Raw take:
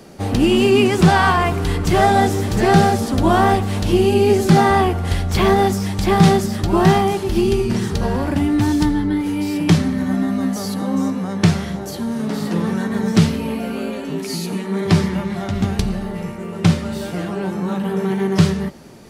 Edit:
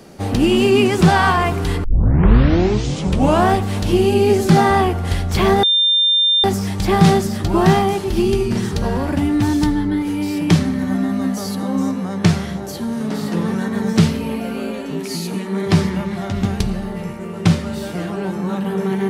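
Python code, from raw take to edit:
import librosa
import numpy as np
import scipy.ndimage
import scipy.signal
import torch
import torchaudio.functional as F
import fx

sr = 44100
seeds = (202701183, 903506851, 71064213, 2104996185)

y = fx.edit(x, sr, fx.tape_start(start_s=1.84, length_s=1.71),
    fx.insert_tone(at_s=5.63, length_s=0.81, hz=3600.0, db=-11.5), tone=tone)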